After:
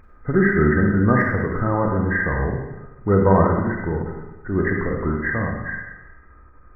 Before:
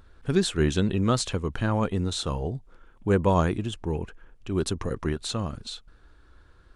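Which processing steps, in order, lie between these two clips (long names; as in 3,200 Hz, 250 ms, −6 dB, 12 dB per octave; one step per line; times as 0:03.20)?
hearing-aid frequency compression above 1,200 Hz 4 to 1
de-essing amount 95%
four-comb reverb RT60 1.1 s, combs from 31 ms, DRR 1 dB
every ending faded ahead of time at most 130 dB per second
level +4 dB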